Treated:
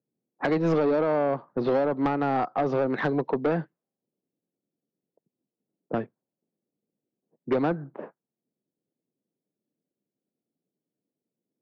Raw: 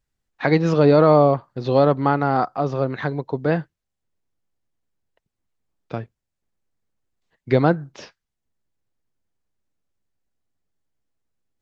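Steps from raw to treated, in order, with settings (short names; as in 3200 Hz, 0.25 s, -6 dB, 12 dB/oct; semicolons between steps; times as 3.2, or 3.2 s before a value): Bessel high-pass 290 Hz, order 6; compressor 16:1, threshold -24 dBFS, peak gain reduction 13.5 dB; low-pass opened by the level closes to 490 Hz, open at -25 dBFS; tilt -3 dB/oct; soft clip -22 dBFS, distortion -12 dB; low-pass opened by the level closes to 770 Hz, open at -26.5 dBFS; gain +4.5 dB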